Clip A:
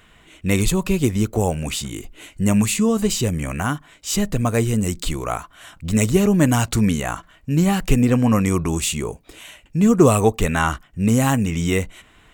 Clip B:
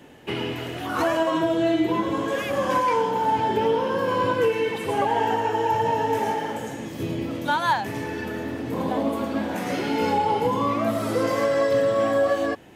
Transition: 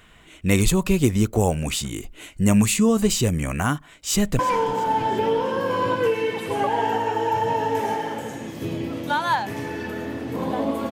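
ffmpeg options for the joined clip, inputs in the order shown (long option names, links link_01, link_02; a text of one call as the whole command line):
ffmpeg -i cue0.wav -i cue1.wav -filter_complex "[0:a]apad=whole_dur=10.91,atrim=end=10.91,atrim=end=4.392[link_01];[1:a]atrim=start=2.768:end=9.29[link_02];[link_01][link_02]acrossfade=duration=0.004:curve1=hsin:curve2=hsin,asplit=2[link_03][link_04];[link_04]afade=type=in:start_time=3.77:duration=0.01,afade=type=out:start_time=4.39:duration=0.01,aecho=0:1:340|680|1020|1360:0.125893|0.0629463|0.0314731|0.0157366[link_05];[link_03][link_05]amix=inputs=2:normalize=0" out.wav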